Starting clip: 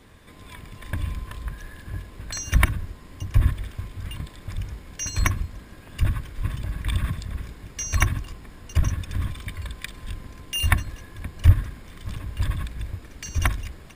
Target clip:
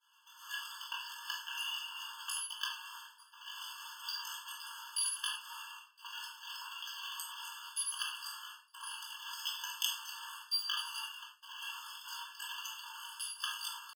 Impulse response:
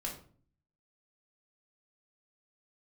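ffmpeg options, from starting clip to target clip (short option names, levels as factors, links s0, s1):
-filter_complex "[0:a]asetrate=74167,aresample=44100,atempo=0.594604,areverse,acompressor=threshold=0.0282:ratio=10,areverse,agate=range=0.0224:threshold=0.0112:ratio=3:detection=peak[s0];[1:a]atrim=start_sample=2205,atrim=end_sample=3528,asetrate=31311,aresample=44100[s1];[s0][s1]afir=irnorm=-1:irlink=0,afftfilt=real='re*eq(mod(floor(b*sr/1024/880),2),1)':imag='im*eq(mod(floor(b*sr/1024/880),2),1)':win_size=1024:overlap=0.75,volume=2.37"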